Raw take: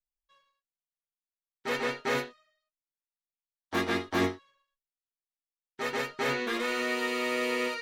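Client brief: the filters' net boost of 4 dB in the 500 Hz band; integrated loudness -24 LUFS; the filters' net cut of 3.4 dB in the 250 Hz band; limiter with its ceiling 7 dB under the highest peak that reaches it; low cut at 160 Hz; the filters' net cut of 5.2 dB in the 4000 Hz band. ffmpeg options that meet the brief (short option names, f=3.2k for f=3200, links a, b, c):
-af "highpass=160,equalizer=f=250:t=o:g=-7.5,equalizer=f=500:t=o:g=7,equalizer=f=4k:t=o:g=-7,volume=8.5dB,alimiter=limit=-14dB:level=0:latency=1"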